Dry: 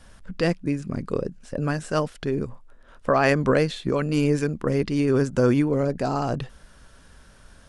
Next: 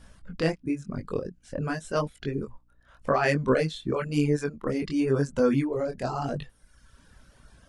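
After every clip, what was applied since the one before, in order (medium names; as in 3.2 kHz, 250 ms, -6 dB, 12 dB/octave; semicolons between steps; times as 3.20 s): chorus 0.93 Hz, delay 20 ms, depth 5.4 ms; hum 60 Hz, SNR 30 dB; reverb removal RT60 1 s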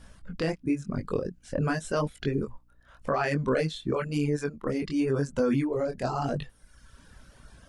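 gain riding within 4 dB 2 s; peak limiter -17 dBFS, peak gain reduction 9.5 dB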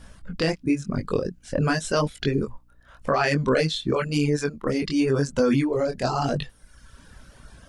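dynamic bell 4.6 kHz, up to +7 dB, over -52 dBFS, Q 0.77; trim +4.5 dB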